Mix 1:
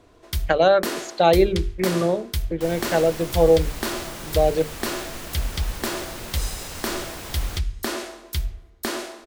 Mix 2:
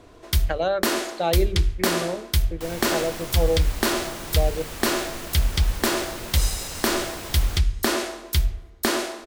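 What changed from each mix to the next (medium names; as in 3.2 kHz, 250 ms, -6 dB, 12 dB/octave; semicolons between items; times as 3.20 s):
speech -7.5 dB; first sound +5.0 dB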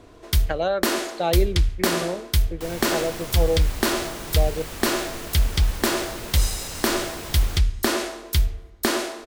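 master: remove hum notches 50/100/150/200/250/300/350/400/450 Hz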